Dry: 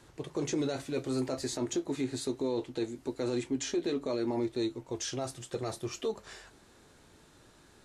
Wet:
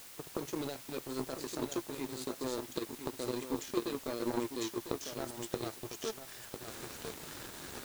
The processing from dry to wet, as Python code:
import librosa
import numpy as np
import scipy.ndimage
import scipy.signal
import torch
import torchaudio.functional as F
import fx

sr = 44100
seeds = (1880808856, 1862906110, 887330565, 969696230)

y = fx.recorder_agc(x, sr, target_db=-27.0, rise_db_per_s=38.0, max_gain_db=30)
y = fx.low_shelf(y, sr, hz=80.0, db=-9.0)
y = y + 10.0 ** (-4.5 / 20.0) * np.pad(y, (int(1000 * sr / 1000.0), 0))[:len(y)]
y = fx.power_curve(y, sr, exponent=2.0)
y = fx.dmg_noise_colour(y, sr, seeds[0], colour='white', level_db=-54.0)
y = y * 10.0 ** (2.5 / 20.0)